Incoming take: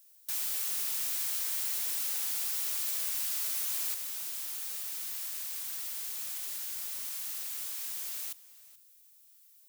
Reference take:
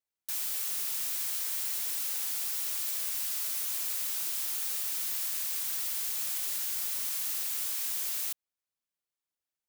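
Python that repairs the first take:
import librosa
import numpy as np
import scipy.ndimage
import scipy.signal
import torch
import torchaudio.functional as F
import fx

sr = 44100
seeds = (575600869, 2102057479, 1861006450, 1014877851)

y = fx.noise_reduce(x, sr, print_start_s=8.91, print_end_s=9.41, reduce_db=30.0)
y = fx.fix_echo_inverse(y, sr, delay_ms=430, level_db=-19.0)
y = fx.gain(y, sr, db=fx.steps((0.0, 0.0), (3.94, 5.0)))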